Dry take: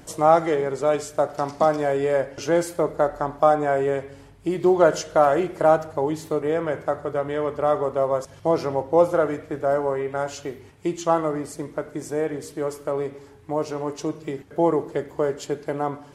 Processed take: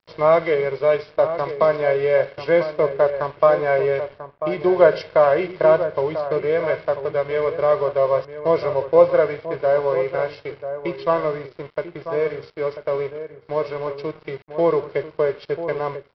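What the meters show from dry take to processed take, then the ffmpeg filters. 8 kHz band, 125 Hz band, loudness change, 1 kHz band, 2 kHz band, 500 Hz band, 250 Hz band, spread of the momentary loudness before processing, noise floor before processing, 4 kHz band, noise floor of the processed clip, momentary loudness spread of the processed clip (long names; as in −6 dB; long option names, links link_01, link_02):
below −20 dB, 0.0 dB, +3.0 dB, −1.5 dB, +5.0 dB, +4.0 dB, −3.0 dB, 11 LU, −47 dBFS, can't be measured, −51 dBFS, 12 LU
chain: -filter_complex "[0:a]highpass=90,equalizer=frequency=2200:width_type=o:width=0.24:gain=9,aecho=1:1:1.9:0.8,aresample=11025,aeval=exprs='sgn(val(0))*max(abs(val(0))-0.01,0)':channel_layout=same,aresample=44100,asplit=2[link_01][link_02];[link_02]adelay=991.3,volume=-10dB,highshelf=frequency=4000:gain=-22.3[link_03];[link_01][link_03]amix=inputs=2:normalize=0"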